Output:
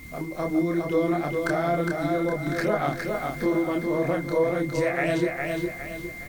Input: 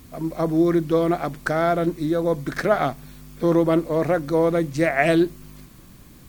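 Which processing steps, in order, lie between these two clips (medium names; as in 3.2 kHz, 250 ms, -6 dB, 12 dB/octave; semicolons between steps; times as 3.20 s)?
compression 2:1, threshold -31 dBFS, peak gain reduction 10 dB; whistle 2.1 kHz -45 dBFS; chorus voices 2, 0.86 Hz, delay 28 ms, depth 1.4 ms; on a send: feedback delay 410 ms, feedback 39%, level -4 dB; on the sum: trim +5 dB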